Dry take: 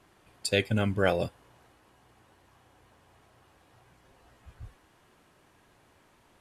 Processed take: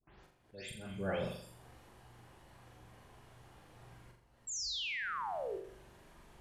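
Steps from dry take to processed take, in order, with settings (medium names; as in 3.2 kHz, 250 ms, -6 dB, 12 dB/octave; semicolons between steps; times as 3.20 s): delay that grows with frequency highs late, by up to 232 ms; gate with hold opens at -54 dBFS; bass shelf 120 Hz +11 dB; slow attack 758 ms; in parallel at +2.5 dB: compression, threshold -52 dBFS, peak gain reduction 22.5 dB; on the sum: vibrato 9.7 Hz 30 cents; painted sound fall, 4.47–5.57 s, 360–7800 Hz -33 dBFS; flutter echo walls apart 7.2 m, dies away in 0.61 s; trim -8 dB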